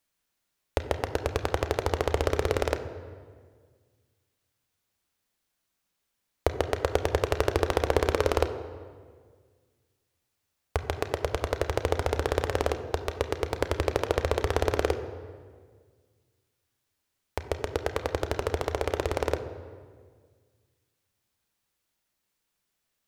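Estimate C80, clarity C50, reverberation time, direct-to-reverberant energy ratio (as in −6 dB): 11.5 dB, 10.5 dB, 1.7 s, 7.5 dB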